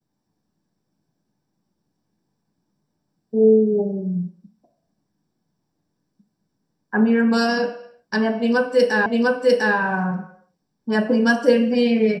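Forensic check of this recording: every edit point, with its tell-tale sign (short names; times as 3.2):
9.06 repeat of the last 0.7 s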